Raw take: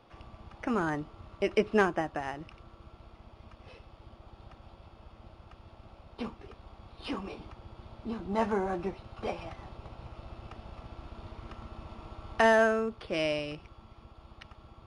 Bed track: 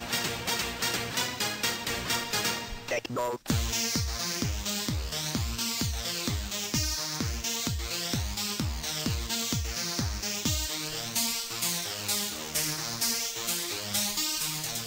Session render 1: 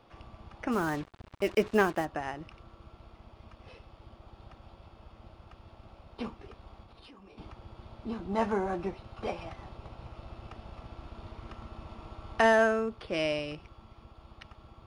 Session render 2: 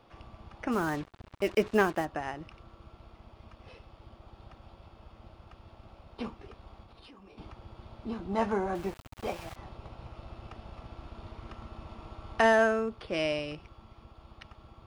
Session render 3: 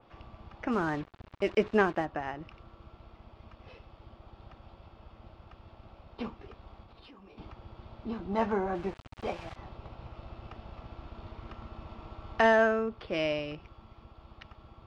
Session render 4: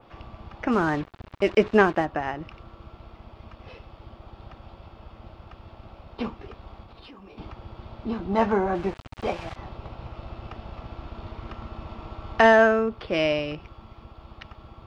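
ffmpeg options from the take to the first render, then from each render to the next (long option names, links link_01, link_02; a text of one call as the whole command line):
ffmpeg -i in.wav -filter_complex "[0:a]asplit=3[link_01][link_02][link_03];[link_01]afade=type=out:start_time=0.71:duration=0.02[link_04];[link_02]acrusher=bits=6:mix=0:aa=0.5,afade=type=in:start_time=0.71:duration=0.02,afade=type=out:start_time=2.04:duration=0.02[link_05];[link_03]afade=type=in:start_time=2.04:duration=0.02[link_06];[link_04][link_05][link_06]amix=inputs=3:normalize=0,asettb=1/sr,asplit=3[link_07][link_08][link_09];[link_07]atrim=end=6.814[link_10];[link_08]atrim=start=6.81:end=7.38,asetpts=PTS-STARTPTS,afade=type=in:duration=0.004:curve=qsin,afade=type=out:start_time=0.566:duration=0.004:curve=qsin,acompressor=threshold=-49dB:ratio=20:attack=3.2:release=140:knee=1:detection=peak[link_11];[link_09]atrim=start=7.376[link_12];[link_10][link_11]acrossfade=duration=0.004:curve1=hsin:curve2=qsin[link_13];[link_13][link_12]acrossfade=duration=0.004:curve1=qsin:curve2=hsin" out.wav
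ffmpeg -i in.wav -filter_complex "[0:a]asettb=1/sr,asplit=3[link_01][link_02][link_03];[link_01]atrim=end=8.754[link_04];[link_02]atrim=start=8.75:end=9.56,asetpts=PTS-STARTPTS,afade=type=in:duration=0.004:curve=qsin,afade=type=out:start_time=0.806:duration=0.004:curve=qsin,aeval=exprs='val(0)*gte(abs(val(0)),0.0075)':channel_layout=same[link_05];[link_03]atrim=start=9.556[link_06];[link_04][link_05]acrossfade=duration=0.004:curve1=hsin:curve2=qsin[link_07];[link_07][link_06]acrossfade=duration=0.004:curve1=qsin:curve2=hsin" out.wav
ffmpeg -i in.wav -af "lowpass=4800,adynamicequalizer=threshold=0.00447:dfrequency=3200:dqfactor=0.7:tfrequency=3200:tqfactor=0.7:attack=5:release=100:ratio=0.375:range=2.5:mode=cutabove:tftype=highshelf" out.wav
ffmpeg -i in.wav -af "volume=7dB" out.wav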